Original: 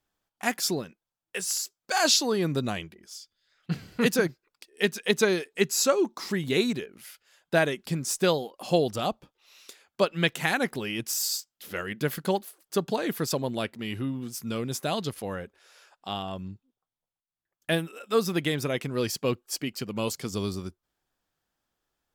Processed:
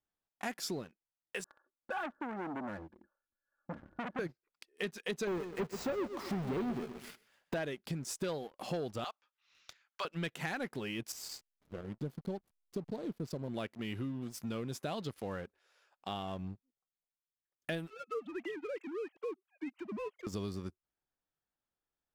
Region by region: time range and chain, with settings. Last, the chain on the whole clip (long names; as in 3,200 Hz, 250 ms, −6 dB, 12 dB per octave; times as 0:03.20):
0:01.44–0:04.19: Chebyshev low-pass filter 1,700 Hz, order 8 + comb filter 3.5 ms, depth 71% + saturating transformer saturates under 2,800 Hz
0:05.27–0:07.54: each half-wave held at its own peak + de-essing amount 65% + repeating echo 127 ms, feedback 33%, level −13.5 dB
0:09.04–0:10.05: high-pass with resonance 1,400 Hz, resonance Q 1.5 + bad sample-rate conversion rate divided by 3×, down none, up filtered
0:11.12–0:13.48: drawn EQ curve 150 Hz 0 dB, 590 Hz −6 dB, 1,900 Hz −22 dB, 4,100 Hz −7 dB + slack as between gear wheels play −40 dBFS
0:17.90–0:20.27: three sine waves on the formant tracks + downward compressor 1.5 to 1, threshold −43 dBFS
whole clip: high-shelf EQ 4,600 Hz −9 dB; leveller curve on the samples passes 2; downward compressor 3 to 1, threshold −29 dBFS; level −8.5 dB